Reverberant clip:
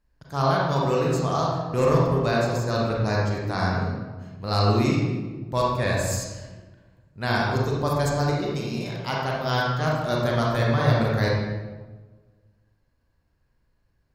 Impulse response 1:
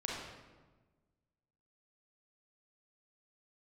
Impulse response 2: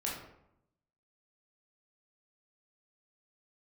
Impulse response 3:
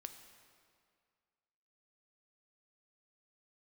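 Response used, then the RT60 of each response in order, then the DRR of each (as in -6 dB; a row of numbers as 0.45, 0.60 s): 1; 1.3, 0.80, 2.1 s; -4.0, -4.5, 7.0 dB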